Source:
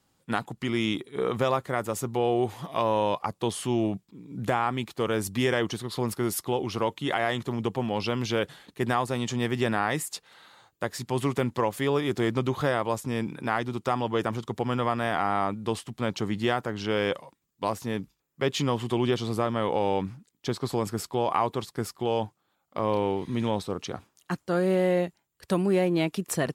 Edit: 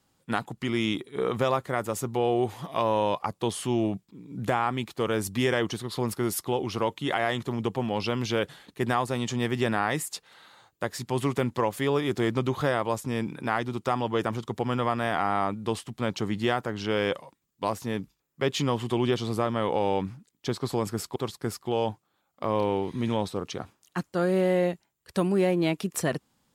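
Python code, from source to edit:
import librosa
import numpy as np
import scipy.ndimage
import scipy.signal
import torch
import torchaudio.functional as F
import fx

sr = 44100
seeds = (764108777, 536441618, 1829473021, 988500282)

y = fx.edit(x, sr, fx.cut(start_s=21.16, length_s=0.34), tone=tone)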